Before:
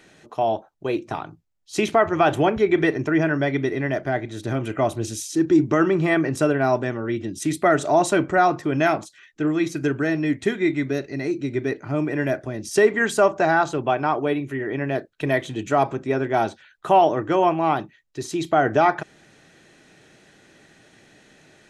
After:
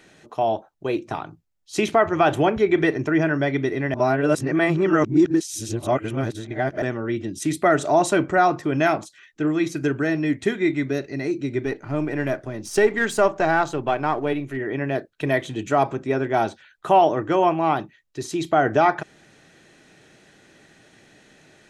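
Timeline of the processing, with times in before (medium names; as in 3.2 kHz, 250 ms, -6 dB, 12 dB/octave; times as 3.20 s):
3.94–6.82 s: reverse
11.65–14.57 s: partial rectifier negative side -3 dB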